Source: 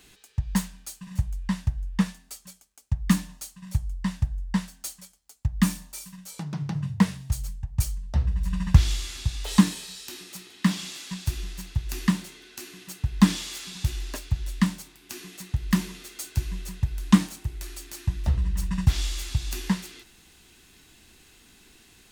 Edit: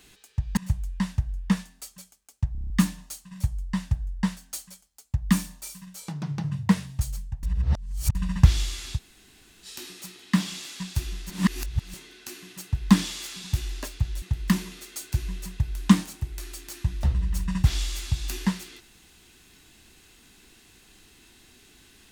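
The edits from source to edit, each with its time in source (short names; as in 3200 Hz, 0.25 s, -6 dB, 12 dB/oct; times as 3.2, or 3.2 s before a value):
0.57–1.06 cut
3.01 stutter 0.03 s, 7 plays
7.74–8.46 reverse
9.28–9.96 room tone, crossfade 0.06 s
11.61–12.25 reverse
14.53–15.45 cut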